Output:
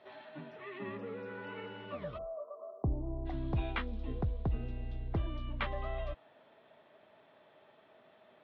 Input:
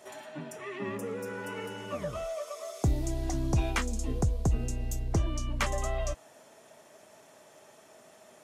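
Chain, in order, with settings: elliptic low-pass 4 kHz, stop band 50 dB, from 2.17 s 1.1 kHz, from 3.25 s 3.7 kHz; trim -5.5 dB

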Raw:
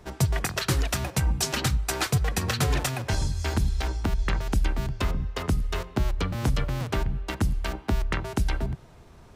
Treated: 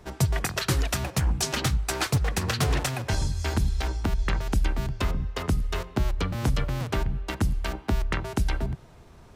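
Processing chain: 1.03–2.94 s: loudspeaker Doppler distortion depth 0.39 ms

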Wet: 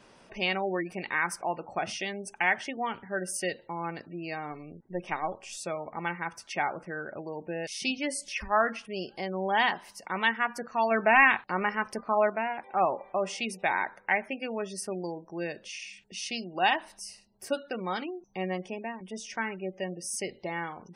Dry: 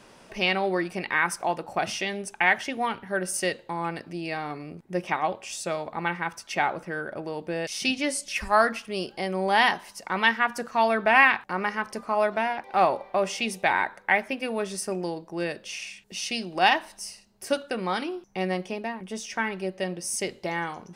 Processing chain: 4.52–5.57 s: partial rectifier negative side -3 dB; 10.91–12.30 s: waveshaping leveller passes 1; spectral gate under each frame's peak -25 dB strong; trim -4.5 dB

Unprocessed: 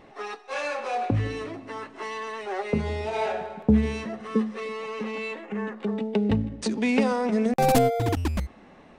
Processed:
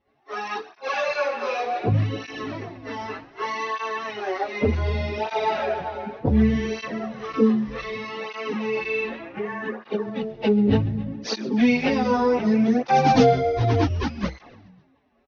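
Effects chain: steep low-pass 6.1 kHz 96 dB/octave; expander -36 dBFS; in parallel at +0.5 dB: compression 6:1, threshold -38 dBFS, peak gain reduction 21.5 dB; on the sum: plain phase-vocoder stretch 1.7×; on a send: frequency-shifting echo 136 ms, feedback 57%, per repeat -83 Hz, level -21 dB; on the sum: cancelling through-zero flanger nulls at 0.66 Hz, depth 6.7 ms; trim +7.5 dB

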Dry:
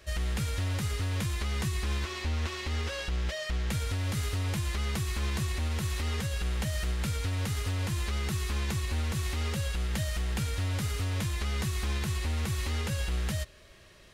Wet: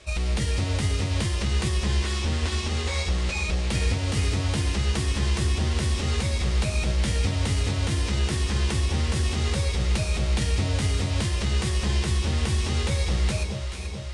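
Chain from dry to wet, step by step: formant shift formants +5 st; elliptic low-pass 9.4 kHz, stop band 70 dB; echo whose repeats swap between lows and highs 216 ms, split 970 Hz, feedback 81%, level -6 dB; trim +5.5 dB

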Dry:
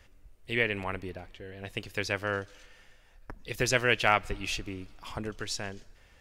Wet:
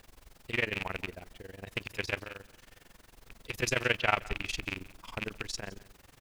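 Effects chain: rattle on loud lows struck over -38 dBFS, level -18 dBFS; 2.19–3.43 s: compression 4:1, threshold -39 dBFS, peak gain reduction 12 dB; 3.98–4.46 s: level-controlled noise filter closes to 2.8 kHz, open at -19.5 dBFS; added noise pink -55 dBFS; AM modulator 22 Hz, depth 90%; delay 167 ms -21 dB

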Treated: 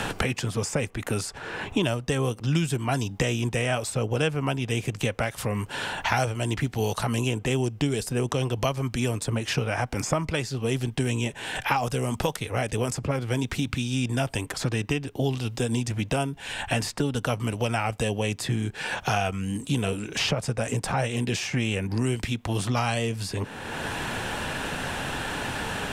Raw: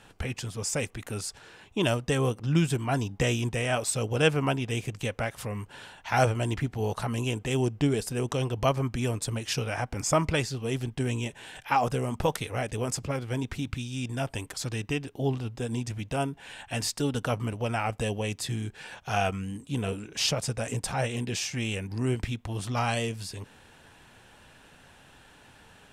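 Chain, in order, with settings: three bands compressed up and down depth 100%; trim +2 dB

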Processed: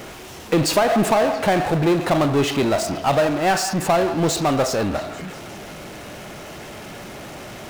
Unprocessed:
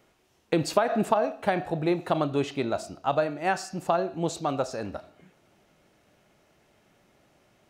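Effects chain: power-law waveshaper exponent 0.5; repeats whose band climbs or falls 168 ms, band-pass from 1 kHz, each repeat 0.7 oct, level -10 dB

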